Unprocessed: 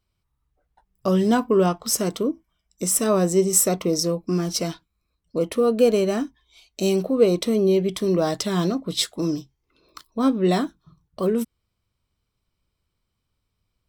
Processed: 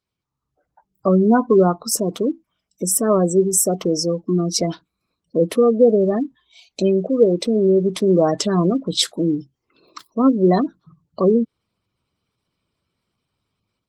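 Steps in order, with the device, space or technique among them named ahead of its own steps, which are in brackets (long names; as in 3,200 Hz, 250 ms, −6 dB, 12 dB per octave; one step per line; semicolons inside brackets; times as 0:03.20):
0:05.40–0:06.17: dynamic equaliser 170 Hz, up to +3 dB, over −38 dBFS, Q 3.5
noise-suppressed video call (high-pass filter 130 Hz 12 dB per octave; gate on every frequency bin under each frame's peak −20 dB strong; automatic gain control gain up to 9 dB; level −1.5 dB; Opus 20 kbit/s 48,000 Hz)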